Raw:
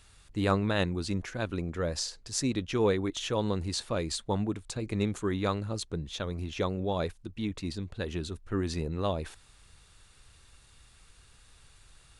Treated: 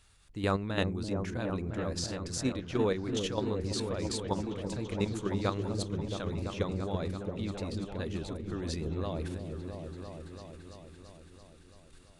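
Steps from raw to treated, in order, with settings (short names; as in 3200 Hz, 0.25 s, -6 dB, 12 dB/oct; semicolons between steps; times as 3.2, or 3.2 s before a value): level quantiser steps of 9 dB; repeats that get brighter 0.336 s, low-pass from 400 Hz, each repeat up 1 oct, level -3 dB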